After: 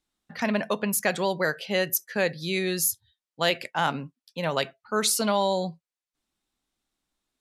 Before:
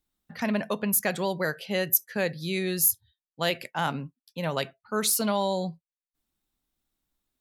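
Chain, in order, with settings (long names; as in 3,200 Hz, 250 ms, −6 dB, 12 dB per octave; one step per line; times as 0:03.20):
low-pass filter 9,000 Hz 12 dB per octave
low-shelf EQ 180 Hz −8 dB
level +3.5 dB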